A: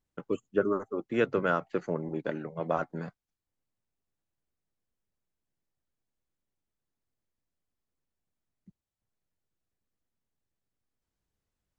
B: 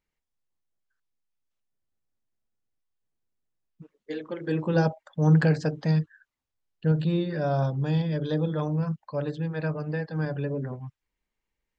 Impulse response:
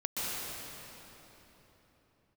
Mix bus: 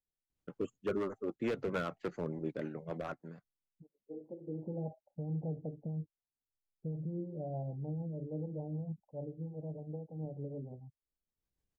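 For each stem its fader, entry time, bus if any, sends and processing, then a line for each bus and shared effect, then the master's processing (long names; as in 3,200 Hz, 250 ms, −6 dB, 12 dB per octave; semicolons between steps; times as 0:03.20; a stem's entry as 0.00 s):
−3.5 dB, 0.30 s, no send, low-shelf EQ 190 Hz +2.5 dB; gain into a clipping stage and back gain 23 dB; automatic ducking −19 dB, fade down 0.90 s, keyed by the second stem
−11.0 dB, 0.00 s, no send, Butterworth low-pass 850 Hz 96 dB per octave; brickwall limiter −19 dBFS, peak gain reduction 8 dB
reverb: not used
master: rotating-speaker cabinet horn 6.7 Hz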